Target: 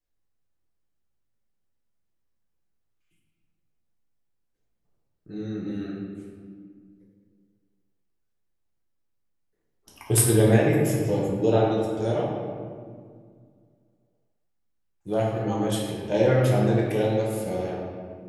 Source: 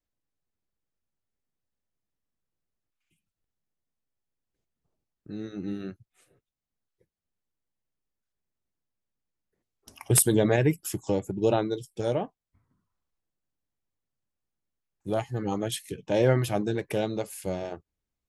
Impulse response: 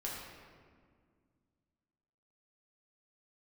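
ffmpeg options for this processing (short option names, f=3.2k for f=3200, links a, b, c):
-filter_complex "[1:a]atrim=start_sample=2205[a];[0:a][a]afir=irnorm=-1:irlink=0,volume=1.5dB"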